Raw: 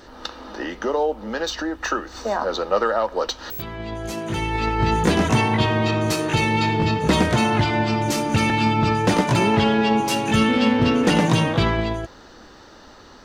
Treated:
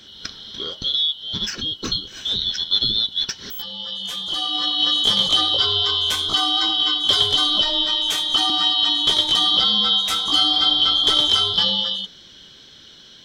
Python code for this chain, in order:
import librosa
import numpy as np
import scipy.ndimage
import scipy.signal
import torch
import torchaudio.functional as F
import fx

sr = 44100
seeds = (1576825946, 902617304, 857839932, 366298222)

y = fx.band_shuffle(x, sr, order='2413')